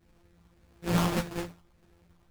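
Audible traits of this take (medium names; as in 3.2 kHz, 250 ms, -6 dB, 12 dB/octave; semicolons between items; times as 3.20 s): a buzz of ramps at a fixed pitch in blocks of 256 samples; phasing stages 6, 1.7 Hz, lowest notch 580–1800 Hz; aliases and images of a low sample rate 2.1 kHz, jitter 20%; a shimmering, thickened sound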